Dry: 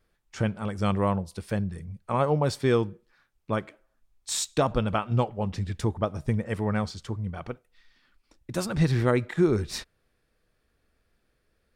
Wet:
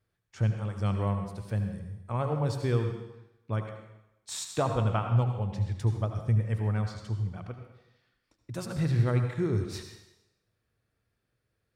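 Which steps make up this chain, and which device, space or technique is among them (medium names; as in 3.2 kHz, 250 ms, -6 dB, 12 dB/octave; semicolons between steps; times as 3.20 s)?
high-pass 50 Hz; peaking EQ 110 Hz +13 dB 0.48 oct; 3.59–5.09 s: peaking EQ 860 Hz +5 dB 2.5 oct; bathroom (reverberation RT60 0.95 s, pre-delay 70 ms, DRR 5.5 dB); trim -8.5 dB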